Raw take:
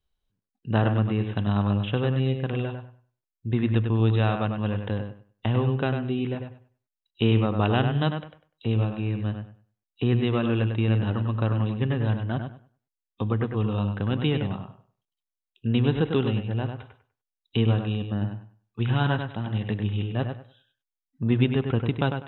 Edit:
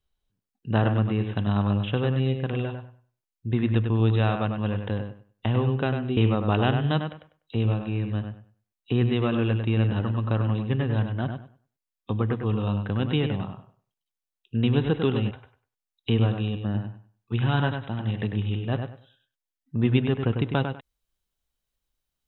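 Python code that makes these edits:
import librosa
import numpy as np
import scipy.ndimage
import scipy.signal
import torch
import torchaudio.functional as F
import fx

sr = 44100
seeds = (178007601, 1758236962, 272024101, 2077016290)

y = fx.edit(x, sr, fx.cut(start_s=6.17, length_s=1.11),
    fx.cut(start_s=16.42, length_s=0.36), tone=tone)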